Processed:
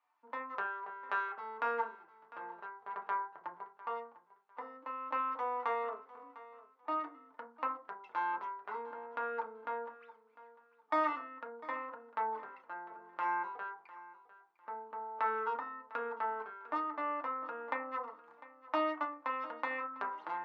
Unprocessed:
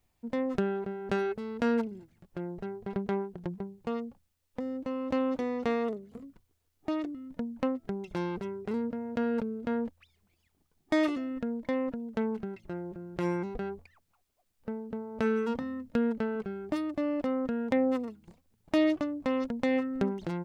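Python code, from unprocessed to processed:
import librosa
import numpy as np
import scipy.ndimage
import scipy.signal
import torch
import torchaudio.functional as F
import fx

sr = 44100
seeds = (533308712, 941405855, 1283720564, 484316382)

p1 = fx.ladder_bandpass(x, sr, hz=1200.0, resonance_pct=60)
p2 = p1 + fx.echo_feedback(p1, sr, ms=701, feedback_pct=26, wet_db=-18, dry=0)
p3 = fx.rev_fdn(p2, sr, rt60_s=0.31, lf_ratio=1.05, hf_ratio=0.4, size_ms=20.0, drr_db=-0.5)
y = F.gain(torch.from_numpy(p3), 9.0).numpy()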